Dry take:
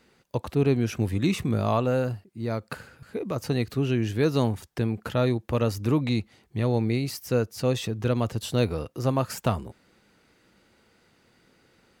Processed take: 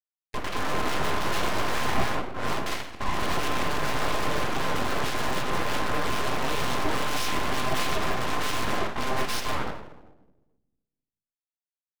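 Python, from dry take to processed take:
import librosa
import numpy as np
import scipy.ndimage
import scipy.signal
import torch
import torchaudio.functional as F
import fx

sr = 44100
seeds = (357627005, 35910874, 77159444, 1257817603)

y = fx.freq_compress(x, sr, knee_hz=1700.0, ratio=4.0)
y = fx.echo_pitch(y, sr, ms=253, semitones=2, count=2, db_per_echo=-3.0)
y = fx.fuzz(y, sr, gain_db=37.0, gate_db=-43.0)
y = y * np.sin(2.0 * np.pi * 520.0 * np.arange(len(y)) / sr)
y = fx.room_shoebox(y, sr, seeds[0], volume_m3=290.0, walls='mixed', distance_m=0.81)
y = np.abs(y)
y = y * 10.0 ** (-8.5 / 20.0)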